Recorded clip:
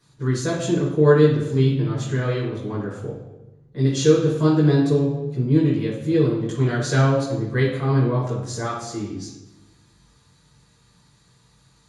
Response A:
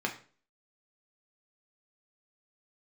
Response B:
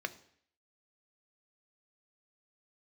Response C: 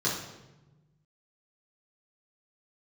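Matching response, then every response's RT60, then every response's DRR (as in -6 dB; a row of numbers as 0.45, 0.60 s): C; 0.40, 0.60, 1.1 s; 0.5, 10.0, -7.0 dB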